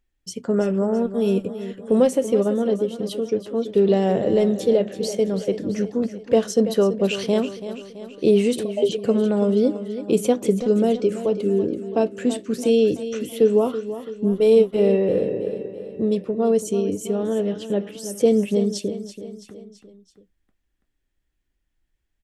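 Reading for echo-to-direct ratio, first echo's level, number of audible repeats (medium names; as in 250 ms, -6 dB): -10.5 dB, -12.0 dB, 4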